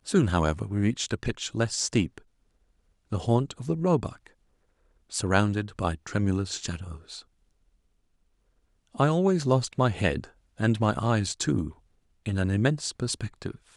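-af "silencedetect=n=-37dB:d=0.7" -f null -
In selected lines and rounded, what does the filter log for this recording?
silence_start: 2.18
silence_end: 3.12 | silence_duration: 0.94
silence_start: 4.27
silence_end: 5.12 | silence_duration: 0.85
silence_start: 7.20
silence_end: 8.95 | silence_duration: 1.75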